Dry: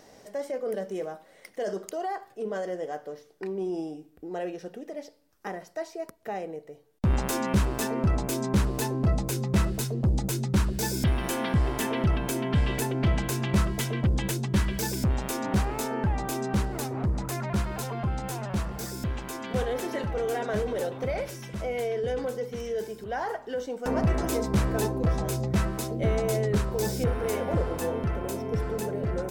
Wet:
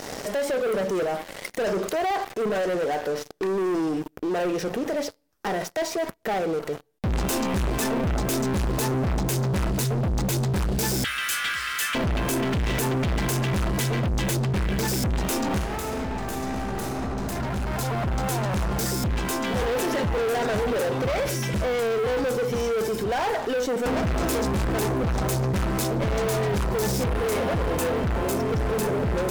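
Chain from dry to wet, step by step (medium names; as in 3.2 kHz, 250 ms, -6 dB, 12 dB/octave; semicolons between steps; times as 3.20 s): 11.04–11.95 s: elliptic high-pass 1.3 kHz, stop band 40 dB; 14.36–14.88 s: treble shelf 5 kHz -10.5 dB; waveshaping leveller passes 5; 15.56–17.22 s: reverb throw, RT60 2.8 s, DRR -2.5 dB; peak limiter -28 dBFS, peak gain reduction 25 dB; trim +6 dB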